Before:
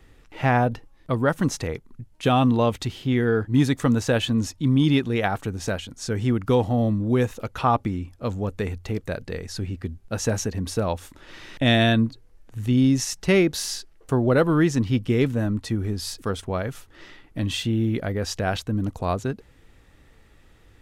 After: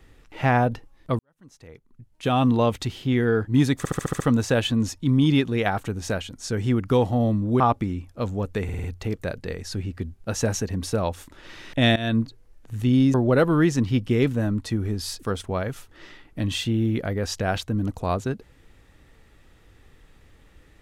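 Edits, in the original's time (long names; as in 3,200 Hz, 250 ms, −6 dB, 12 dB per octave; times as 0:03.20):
0:01.19–0:02.50: fade in quadratic
0:03.78: stutter 0.07 s, 7 plays
0:07.18–0:07.64: remove
0:08.68: stutter 0.05 s, 5 plays
0:11.80–0:12.05: fade in, from −19.5 dB
0:12.98–0:14.13: remove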